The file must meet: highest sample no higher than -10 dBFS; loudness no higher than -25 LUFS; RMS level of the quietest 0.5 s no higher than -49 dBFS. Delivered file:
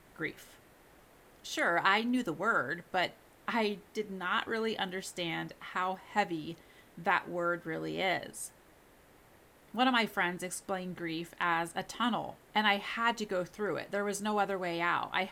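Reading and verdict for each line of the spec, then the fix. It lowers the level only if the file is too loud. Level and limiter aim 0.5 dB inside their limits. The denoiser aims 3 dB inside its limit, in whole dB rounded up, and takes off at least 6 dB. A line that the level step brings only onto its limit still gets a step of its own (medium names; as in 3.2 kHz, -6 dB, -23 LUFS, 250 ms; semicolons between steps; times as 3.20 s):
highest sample -12.0 dBFS: pass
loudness -33.0 LUFS: pass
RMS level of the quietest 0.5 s -61 dBFS: pass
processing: none needed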